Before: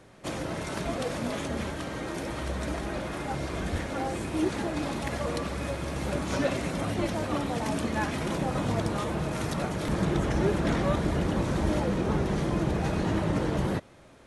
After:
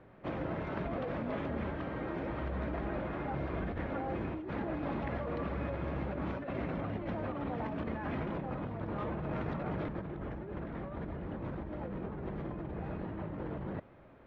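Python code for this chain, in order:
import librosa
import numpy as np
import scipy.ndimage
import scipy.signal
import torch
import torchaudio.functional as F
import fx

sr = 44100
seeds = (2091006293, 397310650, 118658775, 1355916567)

y = scipy.signal.sosfilt(scipy.signal.bessel(4, 1800.0, 'lowpass', norm='mag', fs=sr, output='sos'), x)
y = fx.over_compress(y, sr, threshold_db=-32.0, ratio=-1.0)
y = F.gain(torch.from_numpy(y), -5.5).numpy()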